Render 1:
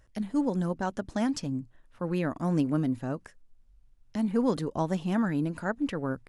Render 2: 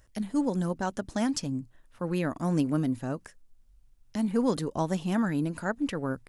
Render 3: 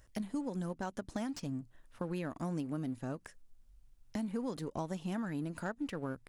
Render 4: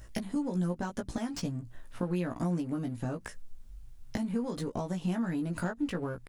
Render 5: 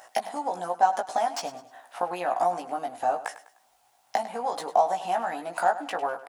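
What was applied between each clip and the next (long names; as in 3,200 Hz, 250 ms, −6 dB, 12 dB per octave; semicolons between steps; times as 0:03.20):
high-shelf EQ 5,300 Hz +8.5 dB
in parallel at −6 dB: dead-zone distortion −41.5 dBFS; on the sum: downward compressor 5 to 1, threshold −34 dBFS, peak gain reduction 15 dB; slew-rate limiting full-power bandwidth 47 Hz; level −1.5 dB
downward compressor, threshold −41 dBFS, peak gain reduction 8.5 dB; low-shelf EQ 200 Hz +4 dB; double-tracking delay 17 ms −3.5 dB; level +8.5 dB
high-pass with resonance 750 Hz, resonance Q 8.6; repeating echo 101 ms, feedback 36%, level −14.5 dB; level +6 dB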